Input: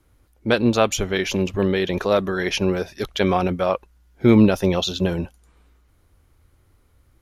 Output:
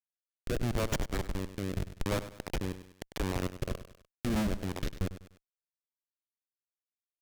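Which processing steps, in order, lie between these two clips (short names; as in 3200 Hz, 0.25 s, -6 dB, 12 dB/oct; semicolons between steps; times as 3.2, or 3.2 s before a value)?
tone controls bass +2 dB, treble +5 dB; in parallel at -3 dB: compressor 12:1, threshold -31 dBFS, peak gain reduction 23 dB; on the sum: Schmitt trigger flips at -13.5 dBFS; rotary speaker horn 0.8 Hz, later 5.5 Hz, at 3.41; on a send: feedback echo 99 ms, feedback 34%, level -13 dB; on the sum: mismatched tape noise reduction encoder only; gain -8 dB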